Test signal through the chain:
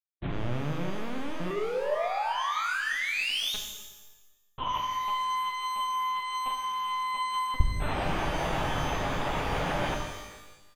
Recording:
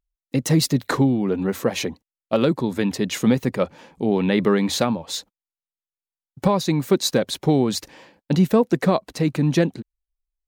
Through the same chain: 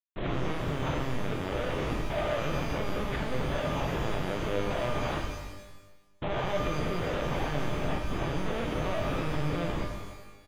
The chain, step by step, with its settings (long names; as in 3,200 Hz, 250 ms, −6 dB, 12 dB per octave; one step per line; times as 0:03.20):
peak hold with a rise ahead of every peak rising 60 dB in 0.51 s
low-pass filter 2,200 Hz 24 dB per octave
mains-hum notches 50/100/150/200/250/300/350/400 Hz
noise gate −43 dBFS, range −49 dB
treble cut that deepens with the level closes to 620 Hz, closed at −16.5 dBFS
parametric band 820 Hz +11 dB 0.91 octaves
leveller curve on the samples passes 3
reversed playback
downward compressor 20 to 1, threshold −21 dBFS
reversed playback
comparator with hysteresis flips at −37 dBFS
double-tracking delay 42 ms −13.5 dB
linear-prediction vocoder at 8 kHz pitch kept
reverb with rising layers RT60 1.1 s, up +12 semitones, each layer −8 dB, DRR 2 dB
level −7.5 dB